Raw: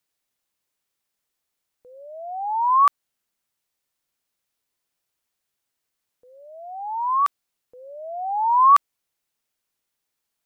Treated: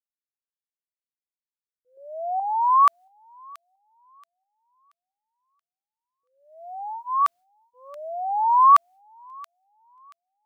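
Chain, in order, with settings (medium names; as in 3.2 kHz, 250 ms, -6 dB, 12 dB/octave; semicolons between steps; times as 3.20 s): 6.54–7.21 s: comb of notches 960 Hz; expander -36 dBFS; 1.97–2.40 s: fifteen-band graphic EQ 400 Hz +11 dB, 1 kHz +11 dB, 2.5 kHz -10 dB; feedback echo behind a high-pass 679 ms, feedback 30%, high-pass 2.3 kHz, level -14 dB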